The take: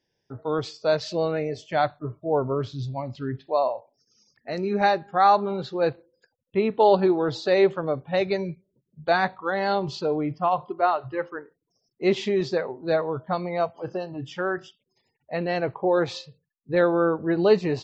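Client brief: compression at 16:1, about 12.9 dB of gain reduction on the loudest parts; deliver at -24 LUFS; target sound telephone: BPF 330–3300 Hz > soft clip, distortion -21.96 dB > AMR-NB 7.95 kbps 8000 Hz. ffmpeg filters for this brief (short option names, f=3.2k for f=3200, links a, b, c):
-af "acompressor=threshold=-25dB:ratio=16,highpass=330,lowpass=3.3k,asoftclip=threshold=-20.5dB,volume=10.5dB" -ar 8000 -c:a libopencore_amrnb -b:a 7950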